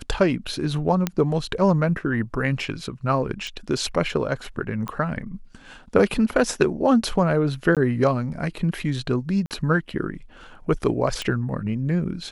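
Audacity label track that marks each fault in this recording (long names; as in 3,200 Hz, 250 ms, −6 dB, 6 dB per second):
1.070000	1.070000	click −8 dBFS
3.470000	3.470000	click
4.880000	4.880000	click −17 dBFS
7.750000	7.770000	drop-out 17 ms
9.460000	9.510000	drop-out 48 ms
11.220000	11.220000	click −14 dBFS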